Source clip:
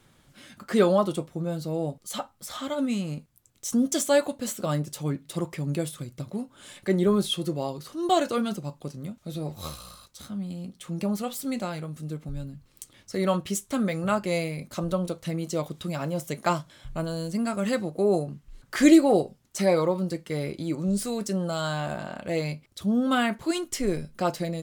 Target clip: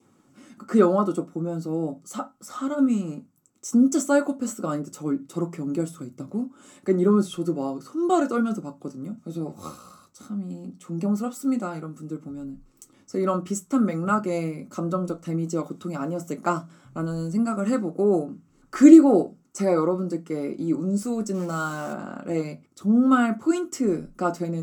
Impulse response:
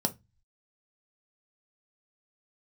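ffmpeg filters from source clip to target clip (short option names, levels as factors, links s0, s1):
-filter_complex "[0:a]adynamicequalizer=threshold=0.00316:dfrequency=1400:dqfactor=4:tfrequency=1400:tqfactor=4:attack=5:release=100:ratio=0.375:range=3.5:mode=boostabove:tftype=bell,asplit=3[s0][s1][s2];[s0]afade=t=out:st=21.33:d=0.02[s3];[s1]acrusher=bits=7:dc=4:mix=0:aa=0.000001,afade=t=in:st=21.33:d=0.02,afade=t=out:st=21.92:d=0.02[s4];[s2]afade=t=in:st=21.92:d=0.02[s5];[s3][s4][s5]amix=inputs=3:normalize=0[s6];[1:a]atrim=start_sample=2205,asetrate=61740,aresample=44100[s7];[s6][s7]afir=irnorm=-1:irlink=0,volume=0.422"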